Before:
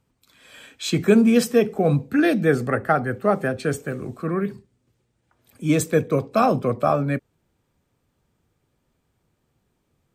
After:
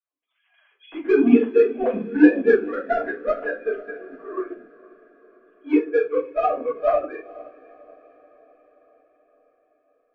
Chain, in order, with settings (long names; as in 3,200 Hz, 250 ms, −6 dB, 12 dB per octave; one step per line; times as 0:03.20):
three sine waves on the formant tracks
in parallel at −3.5 dB: soft clipping −18 dBFS, distortion −7 dB
on the sum: feedback delay with all-pass diffusion 484 ms, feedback 61%, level −14 dB
rectangular room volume 230 cubic metres, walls furnished, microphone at 5.1 metres
expander for the loud parts 1.5 to 1, over −24 dBFS
level −11 dB